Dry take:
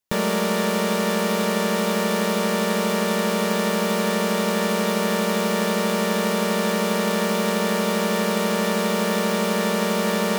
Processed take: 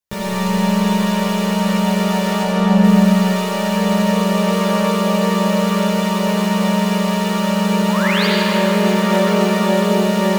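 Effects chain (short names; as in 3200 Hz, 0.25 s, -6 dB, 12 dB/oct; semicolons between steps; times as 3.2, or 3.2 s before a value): 2.43–2.84 tilt -2.5 dB/oct; 7.89–8.26 painted sound rise 800–5000 Hz -21 dBFS; chorus voices 6, 0.91 Hz, delay 15 ms, depth 1.1 ms; reverb RT60 5.0 s, pre-delay 40 ms, DRR -5 dB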